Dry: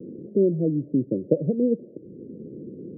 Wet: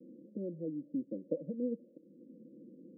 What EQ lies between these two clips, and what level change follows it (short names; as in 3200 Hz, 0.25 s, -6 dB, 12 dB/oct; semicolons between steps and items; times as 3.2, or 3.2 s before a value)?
elliptic low-pass 530 Hz, stop band 40 dB; differentiator; fixed phaser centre 410 Hz, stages 6; +16.0 dB